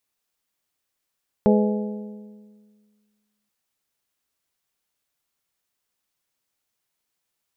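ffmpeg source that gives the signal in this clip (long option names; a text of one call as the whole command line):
ffmpeg -f lavfi -i "aevalsrc='0.2*pow(10,-3*t/1.81)*sin(2*PI*210*t)+0.141*pow(10,-3*t/1.47)*sin(2*PI*420*t)+0.1*pow(10,-3*t/1.392)*sin(2*PI*504*t)+0.0708*pow(10,-3*t/1.302)*sin(2*PI*630*t)+0.0501*pow(10,-3*t/1.194)*sin(2*PI*840*t)':duration=2.03:sample_rate=44100" out.wav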